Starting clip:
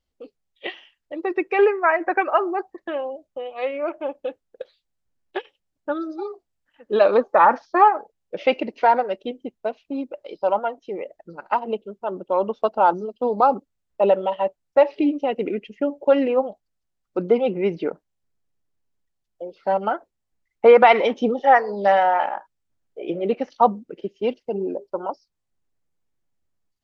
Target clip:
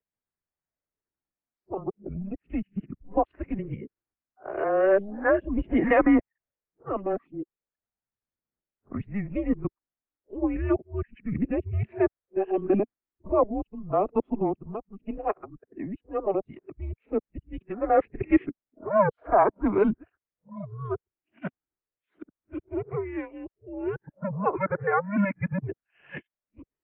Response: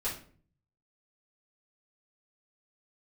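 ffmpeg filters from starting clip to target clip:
-filter_complex "[0:a]areverse,acrossover=split=240|320|840[link_01][link_02][link_03][link_04];[link_01]volume=31dB,asoftclip=hard,volume=-31dB[link_05];[link_03]aphaser=in_gain=1:out_gain=1:delay=2.3:decay=0.58:speed=0.35:type=triangular[link_06];[link_05][link_02][link_06][link_04]amix=inputs=4:normalize=0,highpass=frequency=200:width_type=q:width=0.5412,highpass=frequency=200:width_type=q:width=1.307,lowpass=frequency=2500:width_type=q:width=0.5176,lowpass=frequency=2500:width_type=q:width=0.7071,lowpass=frequency=2500:width_type=q:width=1.932,afreqshift=-200,volume=-6dB"

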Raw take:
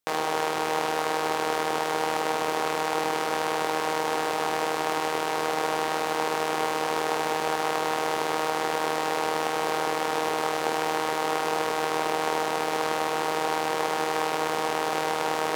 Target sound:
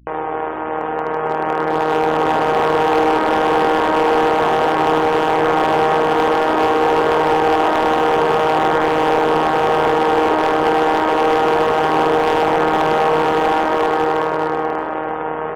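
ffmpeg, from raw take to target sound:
ffmpeg -i in.wav -filter_complex "[0:a]lowpass=1400,afftfilt=real='re*gte(hypot(re,im),0.00501)':imag='im*gte(hypot(re,im),0.00501)':win_size=1024:overlap=0.75,dynaudnorm=framelen=280:gausssize=13:maxgain=13dB,flanger=delay=1.8:depth=8.6:regen=-55:speed=0.14:shape=triangular,aeval=exprs='val(0)+0.00158*(sin(2*PI*60*n/s)+sin(2*PI*2*60*n/s)/2+sin(2*PI*3*60*n/s)/3+sin(2*PI*4*60*n/s)/4+sin(2*PI*5*60*n/s)/5)':channel_layout=same,asoftclip=type=hard:threshold=-18dB,asplit=2[link_01][link_02];[link_02]aecho=0:1:390:0.211[link_03];[link_01][link_03]amix=inputs=2:normalize=0,volume=9dB" out.wav

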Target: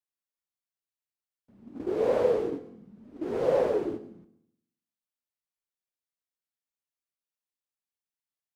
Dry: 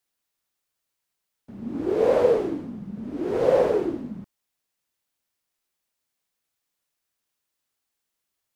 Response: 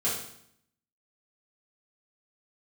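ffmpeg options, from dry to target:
-filter_complex "[0:a]agate=range=-11dB:threshold=-28dB:ratio=16:detection=peak,flanger=delay=1.5:depth=8.7:regen=77:speed=0.65:shape=triangular,asplit=2[link_01][link_02];[1:a]atrim=start_sample=2205,adelay=110[link_03];[link_02][link_03]afir=irnorm=-1:irlink=0,volume=-24.5dB[link_04];[link_01][link_04]amix=inputs=2:normalize=0,volume=-1dB"

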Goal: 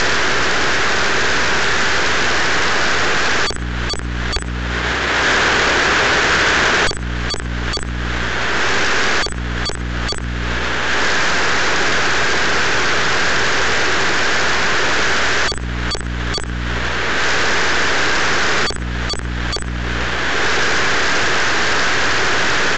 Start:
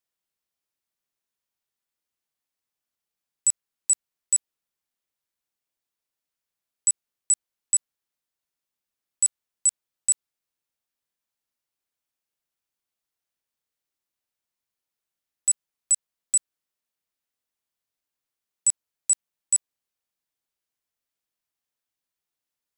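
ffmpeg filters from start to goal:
ffmpeg -i in.wav -filter_complex "[0:a]bass=frequency=250:gain=7,treble=frequency=4000:gain=-14,asplit=2[link_01][link_02];[link_02]adelay=60,lowpass=frequency=1400:poles=1,volume=-19.5dB,asplit=2[link_03][link_04];[link_04]adelay=60,lowpass=frequency=1400:poles=1,volume=0.18[link_05];[link_01][link_03][link_05]amix=inputs=3:normalize=0,acompressor=mode=upward:threshold=-29dB:ratio=2.5,equalizer=frequency=400:width_type=o:width=0.67:gain=12,equalizer=frequency=1600:width_type=o:width=0.67:gain=11,equalizer=frequency=4000:width_type=o:width=0.67:gain=-3,asplit=2[link_06][link_07];[link_07]highpass=frequency=720:poles=1,volume=34dB,asoftclip=type=tanh:threshold=-1.5dB[link_08];[link_06][link_08]amix=inputs=2:normalize=0,lowpass=frequency=3300:poles=1,volume=-6dB,aeval=exprs='max(val(0),0)':channel_layout=same,asettb=1/sr,asplit=3[link_09][link_10][link_11];[link_09]atrim=end=4.364[link_12];[link_10]atrim=start=4.36:end=6.89,asetpts=PTS-STARTPTS,afade=type=in:duration=0.004:curve=qsin,afade=type=out:start_time=2.526:duration=0.004:curve=qsin,highpass=50[link_13];[link_11]atrim=start=6.886[link_14];[link_12][link_13]acrossfade=duration=0.004:curve1=hsin:curve2=qsin[link_15];[link_15][link_14]acrossfade=duration=0.004:curve1=qsin:curve2=hsin,aeval=exprs='0.168*sin(PI/2*3.16*val(0)/0.168)':channel_layout=same,aeval=exprs='val(0)+0.0112*(sin(2*PI*60*n/s)+sin(2*PI*2*60*n/s)/2+sin(2*PI*3*60*n/s)/3+sin(2*PI*4*60*n/s)/4+sin(2*PI*5*60*n/s)/5)':channel_layout=same,alimiter=level_in=25dB:limit=-1dB:release=50:level=0:latency=1,volume=-7dB" -ar 16000 -c:a pcm_mulaw out.wav

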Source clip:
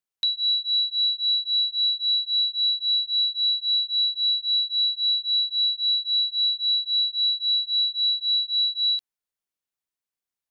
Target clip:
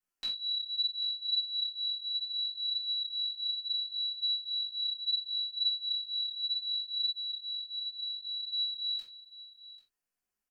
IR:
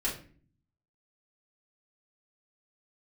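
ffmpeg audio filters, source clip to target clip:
-filter_complex "[0:a]equalizer=frequency=3700:width_type=o:width=0.31:gain=-14.5,flanger=delay=16.5:depth=5.6:speed=0.7,aecho=1:1:791:0.133,asettb=1/sr,asplit=3[link_01][link_02][link_03];[link_01]atrim=end=7.114[link_04];[link_02]atrim=start=7.11:end=8.43,asetpts=PTS-STARTPTS,afade=type=in:duration=0.004:curve=qsin,afade=type=out:start_time=1.316:duration=0.004:curve=qsin,acompressor=threshold=-40dB:ratio=2[link_05];[link_03]atrim=start=8.426[link_06];[link_04][link_05]acrossfade=duration=0.004:curve1=hsin:curve2=qsin[link_07];[link_07][link_06]acrossfade=duration=0.004:curve1=qsin:curve2=hsin[link_08];[1:a]atrim=start_sample=2205,atrim=end_sample=3969,asetrate=41895,aresample=44100[link_09];[link_08][link_09]afir=irnorm=-1:irlink=0"

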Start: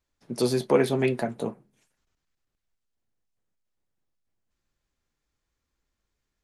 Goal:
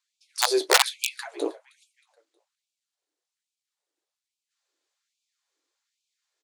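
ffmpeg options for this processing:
ffmpeg -i in.wav -filter_complex "[0:a]lowpass=11000,lowshelf=frequency=220:gain=7.5,asplit=2[link_01][link_02];[link_02]asplit=3[link_03][link_04][link_05];[link_03]adelay=315,afreqshift=-40,volume=-21.5dB[link_06];[link_04]adelay=630,afreqshift=-80,volume=-28.4dB[link_07];[link_05]adelay=945,afreqshift=-120,volume=-35.4dB[link_08];[link_06][link_07][link_08]amix=inputs=3:normalize=0[link_09];[link_01][link_09]amix=inputs=2:normalize=0,aeval=exprs='(mod(3.76*val(0)+1,2)-1)/3.76':channel_layout=same,equalizer=frequency=250:width_type=o:width=1:gain=7,equalizer=frequency=4000:width_type=o:width=1:gain=6,equalizer=frequency=8000:width_type=o:width=1:gain=6,afftfilt=real='re*gte(b*sr/1024,280*pow(2300/280,0.5+0.5*sin(2*PI*1.2*pts/sr)))':imag='im*gte(b*sr/1024,280*pow(2300/280,0.5+0.5*sin(2*PI*1.2*pts/sr)))':win_size=1024:overlap=0.75" out.wav

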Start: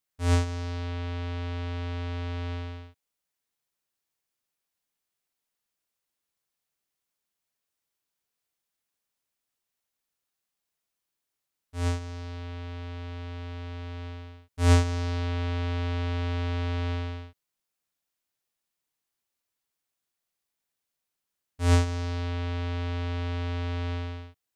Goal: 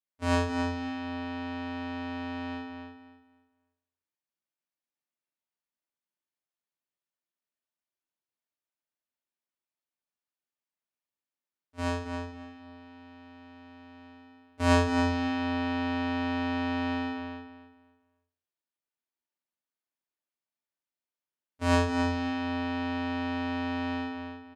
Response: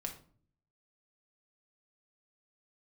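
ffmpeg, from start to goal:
-filter_complex "[0:a]highshelf=frequency=3700:gain=-10,agate=range=-12dB:threshold=-35dB:ratio=16:detection=peak,highpass=90,lowshelf=frequency=150:gain=-9,asplit=2[link_01][link_02];[link_02]adelay=271,lowpass=frequency=4100:poles=1,volume=-5dB,asplit=2[link_03][link_04];[link_04]adelay=271,lowpass=frequency=4100:poles=1,volume=0.27,asplit=2[link_05][link_06];[link_06]adelay=271,lowpass=frequency=4100:poles=1,volume=0.27,asplit=2[link_07][link_08];[link_08]adelay=271,lowpass=frequency=4100:poles=1,volume=0.27[link_09];[link_01][link_03][link_05][link_07][link_09]amix=inputs=5:normalize=0[link_10];[1:a]atrim=start_sample=2205,afade=type=out:start_time=0.15:duration=0.01,atrim=end_sample=7056,asetrate=57330,aresample=44100[link_11];[link_10][link_11]afir=irnorm=-1:irlink=0,volume=8dB"

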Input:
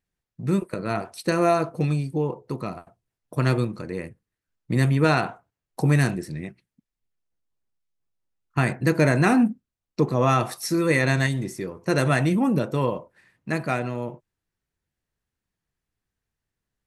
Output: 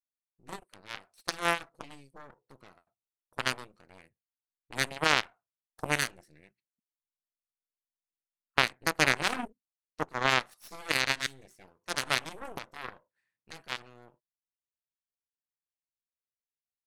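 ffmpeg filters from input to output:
ffmpeg -i in.wav -af "aeval=exprs='0.473*(cos(1*acos(clip(val(0)/0.473,-1,1)))-cos(1*PI/2))+0.119*(cos(2*acos(clip(val(0)/0.473,-1,1)))-cos(2*PI/2))+0.168*(cos(3*acos(clip(val(0)/0.473,-1,1)))-cos(3*PI/2))+0.0335*(cos(4*acos(clip(val(0)/0.473,-1,1)))-cos(4*PI/2))+0.0106*(cos(8*acos(clip(val(0)/0.473,-1,1)))-cos(8*PI/2))':channel_layout=same,tiltshelf=frequency=650:gain=-5,volume=-3dB" out.wav

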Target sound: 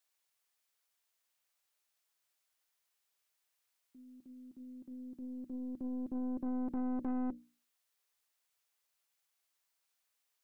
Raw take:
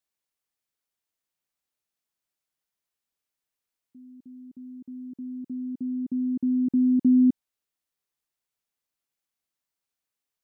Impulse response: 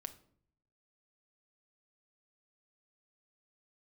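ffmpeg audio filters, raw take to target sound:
-af "acompressor=threshold=-22dB:ratio=3,highpass=frequency=120:poles=1,equalizer=frequency=210:width=0.8:gain=-14,bandreject=frequency=60:width_type=h:width=6,bandreject=frequency=120:width_type=h:width=6,bandreject=frequency=180:width_type=h:width=6,bandreject=frequency=240:width_type=h:width=6,bandreject=frequency=300:width_type=h:width=6,aeval=exprs='(tanh(112*val(0)+0.5)-tanh(0.5))/112':channel_layout=same,volume=7.5dB"

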